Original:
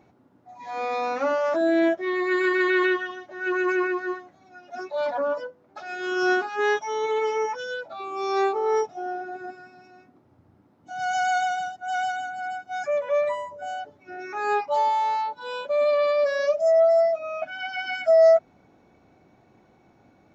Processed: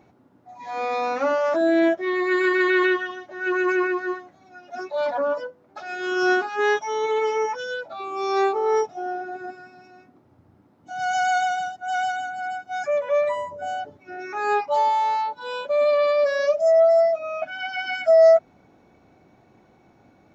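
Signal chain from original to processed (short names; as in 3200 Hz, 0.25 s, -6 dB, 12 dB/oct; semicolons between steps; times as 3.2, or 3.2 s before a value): 13.36–13.97 low shelf 400 Hz +7 dB; gain +2 dB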